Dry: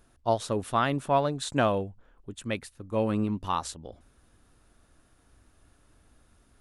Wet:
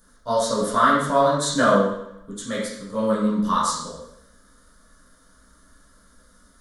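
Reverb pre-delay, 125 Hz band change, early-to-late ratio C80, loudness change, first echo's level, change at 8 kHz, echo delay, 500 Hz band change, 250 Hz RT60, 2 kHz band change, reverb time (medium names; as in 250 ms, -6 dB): 5 ms, +1.0 dB, 4.5 dB, +7.5 dB, no echo, +11.5 dB, no echo, +7.0 dB, 0.85 s, +9.5 dB, 0.80 s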